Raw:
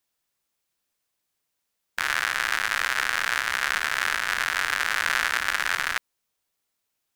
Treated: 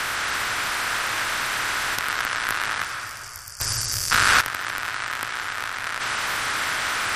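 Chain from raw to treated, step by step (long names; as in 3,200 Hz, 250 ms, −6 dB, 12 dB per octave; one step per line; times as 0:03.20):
compressor on every frequency bin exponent 0.2
brickwall limiter −10.5 dBFS, peak gain reduction 11 dB
compressor whose output falls as the input rises −31 dBFS, ratio −0.5
wrap-around overflow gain 12.5 dB
0:02.84–0:04.11: gain on a spectral selection 290–4,600 Hz −29 dB
frequency shifter −130 Hz
0:02.03–0:02.90: leveller curve on the samples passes 1
on a send at −4 dB: convolution reverb RT60 2.1 s, pre-delay 144 ms
0:03.60–0:04.41: on the sum: leveller curve on the samples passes 5
notch filter 6,700 Hz, Q 24
level +4 dB
MP3 56 kbit/s 48,000 Hz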